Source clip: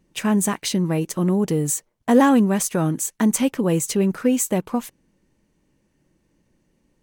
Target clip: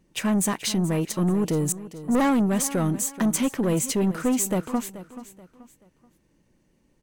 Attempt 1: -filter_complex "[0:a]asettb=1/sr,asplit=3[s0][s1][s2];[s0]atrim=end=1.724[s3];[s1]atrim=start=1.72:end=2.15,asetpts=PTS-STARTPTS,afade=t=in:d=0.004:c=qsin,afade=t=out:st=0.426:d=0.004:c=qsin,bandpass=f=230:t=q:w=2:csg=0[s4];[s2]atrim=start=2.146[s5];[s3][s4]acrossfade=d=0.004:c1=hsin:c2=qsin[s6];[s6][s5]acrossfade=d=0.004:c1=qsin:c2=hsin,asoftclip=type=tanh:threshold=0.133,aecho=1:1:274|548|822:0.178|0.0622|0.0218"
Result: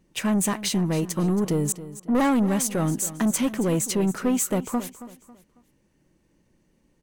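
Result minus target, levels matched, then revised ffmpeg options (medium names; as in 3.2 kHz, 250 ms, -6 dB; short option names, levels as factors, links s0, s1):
echo 157 ms early
-filter_complex "[0:a]asettb=1/sr,asplit=3[s0][s1][s2];[s0]atrim=end=1.724[s3];[s1]atrim=start=1.72:end=2.15,asetpts=PTS-STARTPTS,afade=t=in:d=0.004:c=qsin,afade=t=out:st=0.426:d=0.004:c=qsin,bandpass=f=230:t=q:w=2:csg=0[s4];[s2]atrim=start=2.146[s5];[s3][s4]acrossfade=d=0.004:c1=hsin:c2=qsin[s6];[s6][s5]acrossfade=d=0.004:c1=qsin:c2=hsin,asoftclip=type=tanh:threshold=0.133,aecho=1:1:431|862|1293:0.178|0.0622|0.0218"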